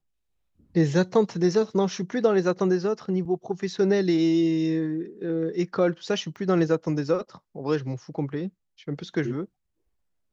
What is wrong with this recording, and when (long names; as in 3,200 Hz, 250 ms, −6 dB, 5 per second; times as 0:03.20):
0:03.25–0:03.26: drop-out 6.4 ms
0:06.36: drop-out 3.6 ms